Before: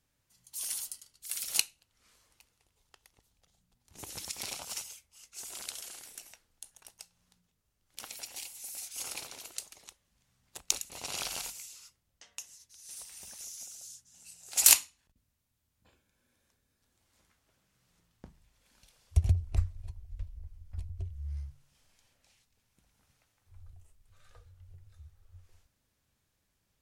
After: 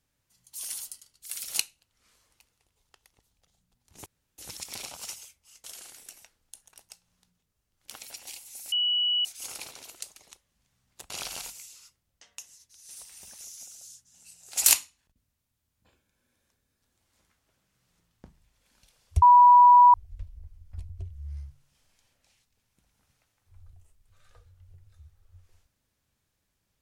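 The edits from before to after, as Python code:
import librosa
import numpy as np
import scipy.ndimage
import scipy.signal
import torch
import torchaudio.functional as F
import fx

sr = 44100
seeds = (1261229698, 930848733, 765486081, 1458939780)

y = fx.edit(x, sr, fx.insert_room_tone(at_s=4.06, length_s=0.32),
    fx.cut(start_s=5.32, length_s=0.41),
    fx.insert_tone(at_s=8.81, length_s=0.53, hz=2940.0, db=-22.5),
    fx.cut(start_s=10.66, length_s=0.44),
    fx.bleep(start_s=19.22, length_s=0.72, hz=977.0, db=-11.0), tone=tone)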